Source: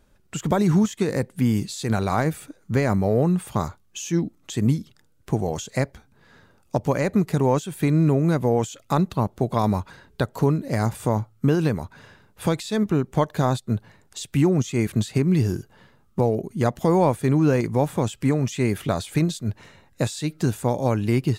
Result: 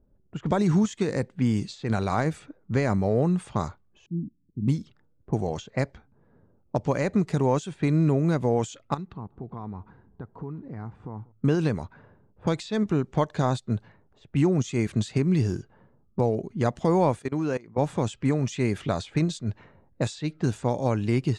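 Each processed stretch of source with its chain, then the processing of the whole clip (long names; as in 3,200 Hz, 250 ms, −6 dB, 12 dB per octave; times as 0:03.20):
0:04.06–0:04.68: inverse Chebyshev low-pass filter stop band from 850 Hz, stop band 60 dB + low-shelf EQ 150 Hz −6 dB
0:08.94–0:11.32: parametric band 590 Hz −13.5 dB 0.31 octaves + downward compressor 2.5 to 1, threshold −35 dBFS + repeating echo 190 ms, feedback 51%, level −23.5 dB
0:17.19–0:17.78: high-pass filter 280 Hz 6 dB per octave + output level in coarse steps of 23 dB
whole clip: low-pass that shuts in the quiet parts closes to 490 Hz, open at −19 dBFS; low-pass filter 8,400 Hz 24 dB per octave; level −3 dB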